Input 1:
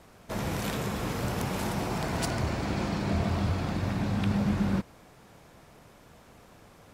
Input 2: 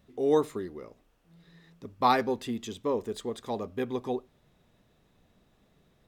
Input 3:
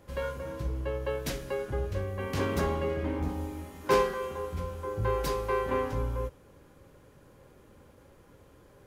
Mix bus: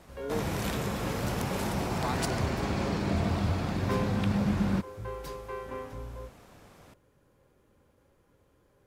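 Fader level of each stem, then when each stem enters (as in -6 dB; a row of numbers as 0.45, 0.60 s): -0.5, -12.0, -9.5 dB; 0.00, 0.00, 0.00 s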